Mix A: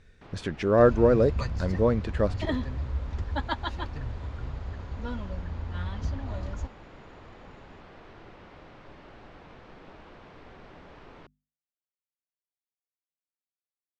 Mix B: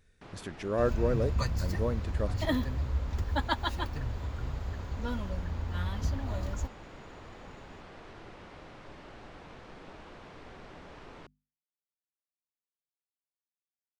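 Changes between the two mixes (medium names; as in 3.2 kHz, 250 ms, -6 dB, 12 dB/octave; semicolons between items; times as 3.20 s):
speech -9.5 dB; master: remove distance through air 95 m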